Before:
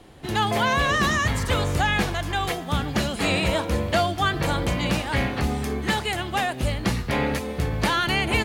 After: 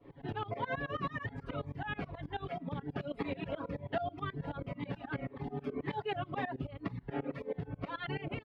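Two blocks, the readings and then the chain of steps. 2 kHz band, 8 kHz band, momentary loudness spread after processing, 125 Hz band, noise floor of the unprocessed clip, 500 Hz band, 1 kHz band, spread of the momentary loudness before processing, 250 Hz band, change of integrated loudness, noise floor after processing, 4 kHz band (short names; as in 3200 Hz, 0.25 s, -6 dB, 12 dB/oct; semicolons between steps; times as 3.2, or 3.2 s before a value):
-18.5 dB, under -40 dB, 4 LU, -15.0 dB, -34 dBFS, -12.5 dB, -15.5 dB, 5 LU, -13.5 dB, -16.0 dB, -57 dBFS, -23.5 dB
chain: air absorption 400 m; comb 7.2 ms, depth 80%; tremolo saw up 9.3 Hz, depth 90%; reverb removal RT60 0.79 s; vocal rider 2 s; tilt -3 dB/oct; compressor 10:1, threshold -24 dBFS, peak gain reduction 14.5 dB; HPF 490 Hz 6 dB/oct; notch 4100 Hz, Q 29; cascading phaser falling 1.9 Hz; gain -1 dB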